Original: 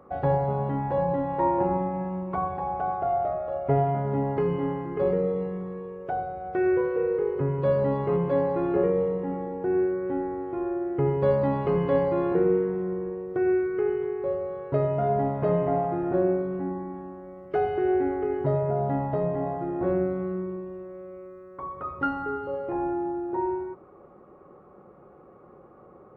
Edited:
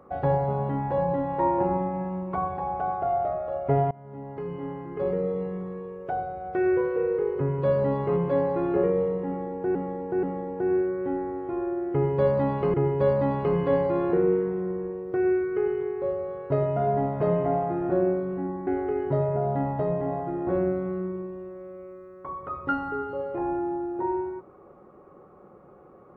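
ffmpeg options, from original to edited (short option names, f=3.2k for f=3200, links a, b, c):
-filter_complex "[0:a]asplit=6[a][b][c][d][e][f];[a]atrim=end=3.91,asetpts=PTS-STARTPTS,afade=t=out:st=3.906:d=0.004:c=hsin:silence=0.0668344[g];[b]atrim=start=3.91:end=9.752,asetpts=PTS-STARTPTS,afade=t=in:d=1.67:silence=0.0668344[h];[c]atrim=start=9.268:end=9.752[i];[d]atrim=start=9.268:end=11.782[j];[e]atrim=start=10.958:end=16.892[k];[f]atrim=start=18.008[l];[g][h]concat=n=2:v=0:a=1[m];[m][i]acrossfade=d=0.004:c1=hsin:c2=hsin[n];[n][j]acrossfade=d=0.004:c1=hsin:c2=hsin[o];[o][k]acrossfade=d=0.004:c1=hsin:c2=hsin[p];[p][l]acrossfade=d=0.004:c1=hsin:c2=hsin"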